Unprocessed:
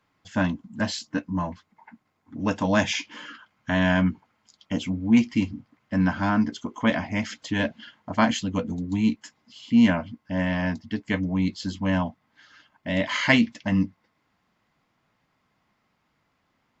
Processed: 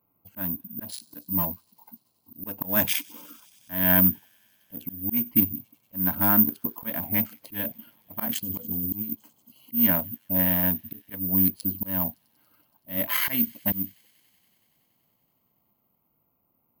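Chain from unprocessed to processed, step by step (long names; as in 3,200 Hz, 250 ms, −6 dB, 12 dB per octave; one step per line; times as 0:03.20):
adaptive Wiener filter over 25 samples
high-pass filter 53 Hz 6 dB per octave
high-shelf EQ 6,100 Hz +4 dB
volume swells 252 ms
0:07.43–0:09.77: compressor whose output falls as the input rises −32 dBFS, ratio −1
delay with a high-pass on its return 94 ms, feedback 85%, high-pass 4,300 Hz, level −19.5 dB
bad sample-rate conversion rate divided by 3×, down none, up zero stuff
level −1.5 dB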